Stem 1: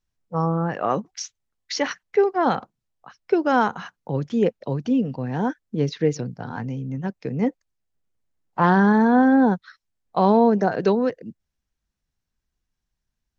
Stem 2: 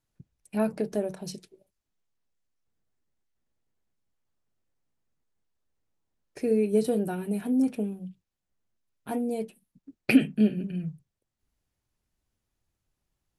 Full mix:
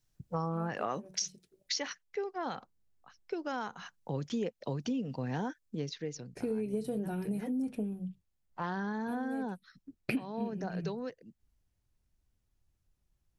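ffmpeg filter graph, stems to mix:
ffmpeg -i stem1.wav -i stem2.wav -filter_complex "[0:a]highshelf=frequency=3000:gain=12,volume=5.5dB,afade=type=out:start_time=1.46:duration=0.48:silence=0.266073,afade=type=in:start_time=3.77:duration=0.46:silence=0.334965,afade=type=out:start_time=5.36:duration=0.69:silence=0.266073,asplit=2[link_01][link_02];[1:a]lowshelf=frequency=140:gain=11.5,volume=-4dB[link_03];[link_02]apad=whole_len=590281[link_04];[link_03][link_04]sidechaincompress=threshold=-37dB:ratio=12:attack=33:release=661[link_05];[link_01][link_05]amix=inputs=2:normalize=0,acompressor=threshold=-31dB:ratio=6" out.wav

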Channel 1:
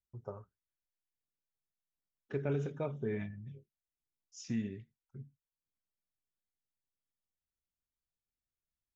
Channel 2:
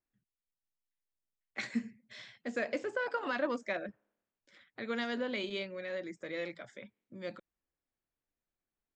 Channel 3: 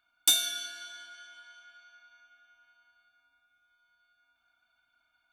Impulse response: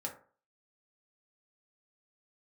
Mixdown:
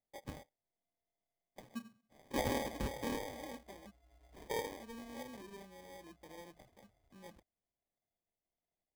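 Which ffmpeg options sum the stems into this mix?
-filter_complex "[0:a]aeval=exprs='val(0)*sgn(sin(2*PI*670*n/s))':channel_layout=same,volume=-4.5dB[link_01];[1:a]acrossover=split=410[link_02][link_03];[link_03]acompressor=threshold=-40dB:ratio=3[link_04];[link_02][link_04]amix=inputs=2:normalize=0,volume=-14dB[link_05];[2:a]highpass=frequency=600:width_type=q:width=4.9,lowpass=frequency=12000:width=0.5412,lowpass=frequency=12000:width=1.3066,adelay=2100,volume=-3dB,afade=type=in:start_time=4.02:duration=0.38:silence=0.281838[link_06];[link_01][link_05][link_06]amix=inputs=3:normalize=0,lowshelf=frequency=220:gain=7,acrusher=samples=32:mix=1:aa=0.000001"

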